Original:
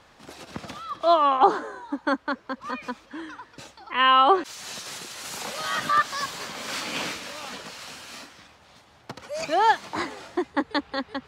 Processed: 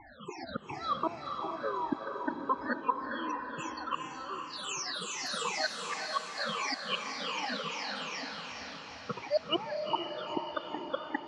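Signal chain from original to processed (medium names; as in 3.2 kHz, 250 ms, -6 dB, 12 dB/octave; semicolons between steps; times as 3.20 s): drifting ripple filter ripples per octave 0.73, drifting -2.7 Hz, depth 22 dB; inverted gate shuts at -15 dBFS, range -29 dB; loudest bins only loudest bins 32; on a send: echo that smears into a reverb 451 ms, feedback 57%, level -4.5 dB; on the sum: trim -2.5 dB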